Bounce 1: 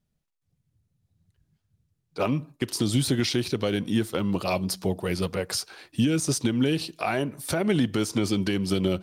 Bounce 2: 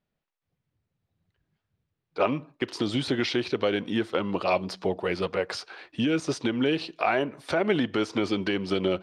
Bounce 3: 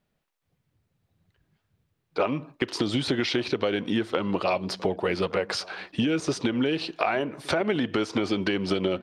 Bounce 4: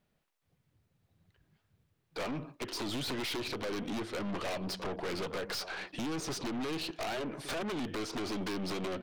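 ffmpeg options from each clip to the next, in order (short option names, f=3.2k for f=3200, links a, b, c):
-af "lowpass=5.2k,bass=f=250:g=-13,treble=f=4k:g=-10,volume=3.5dB"
-filter_complex "[0:a]acompressor=threshold=-29dB:ratio=4,asplit=2[a][b];[b]adelay=1166,volume=-22dB,highshelf=f=4k:g=-26.2[c];[a][c]amix=inputs=2:normalize=0,volume=6.5dB"
-af "aeval=exprs='0.0794*(abs(mod(val(0)/0.0794+3,4)-2)-1)':c=same,aeval=exprs='(tanh(50.1*val(0)+0.3)-tanh(0.3))/50.1':c=same"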